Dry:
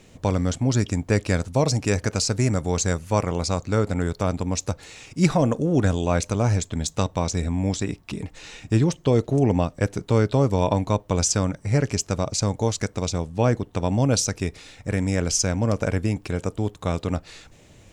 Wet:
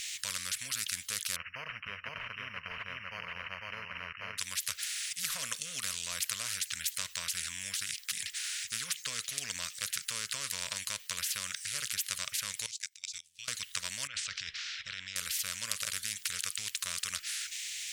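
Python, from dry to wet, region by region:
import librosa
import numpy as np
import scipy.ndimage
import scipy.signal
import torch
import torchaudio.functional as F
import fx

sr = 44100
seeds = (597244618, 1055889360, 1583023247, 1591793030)

y = fx.chain(x, sr, fx.peak_eq(hz=980.0, db=8.5, octaves=1.2),
    fx.echo_single(ms=501, db=-3.0),
    fx.resample_bad(factor=8, down='none', up='filtered'), at=(1.36, 4.38))
y = fx.chain(y, sr, fx.tone_stack(knobs='6-0-2'),
    fx.level_steps(step_db=20), at=(12.66, 13.48))
y = fx.chain(y, sr, fx.lowpass(hz=3500.0, slope=24),
    fx.over_compress(threshold_db=-28.0, ratio=-1.0), at=(14.07, 15.16))
y = scipy.signal.sosfilt(scipy.signal.cheby2(4, 50, 890.0, 'highpass', fs=sr, output='sos'), y)
y = fx.spectral_comp(y, sr, ratio=10.0)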